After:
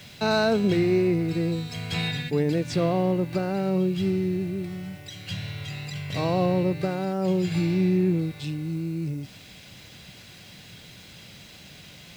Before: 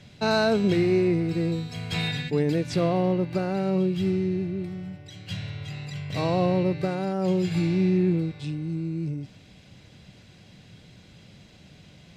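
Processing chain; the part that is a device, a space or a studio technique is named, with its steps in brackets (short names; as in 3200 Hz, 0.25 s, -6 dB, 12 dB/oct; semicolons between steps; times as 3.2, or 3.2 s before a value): noise-reduction cassette on a plain deck (mismatched tape noise reduction encoder only; wow and flutter 15 cents; white noise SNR 33 dB)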